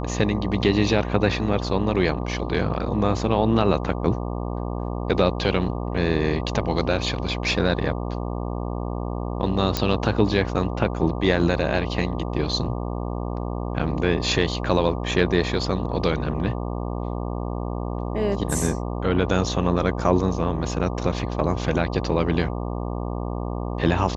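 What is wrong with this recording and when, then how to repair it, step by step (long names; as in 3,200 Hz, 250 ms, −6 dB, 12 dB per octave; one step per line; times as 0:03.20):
mains buzz 60 Hz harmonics 20 −28 dBFS
0:09.77: click −6 dBFS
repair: click removal
hum removal 60 Hz, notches 20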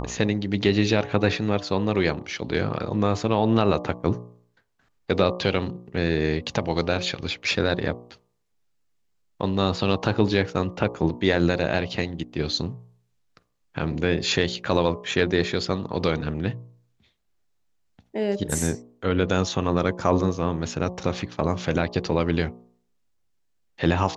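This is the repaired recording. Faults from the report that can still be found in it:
none of them is left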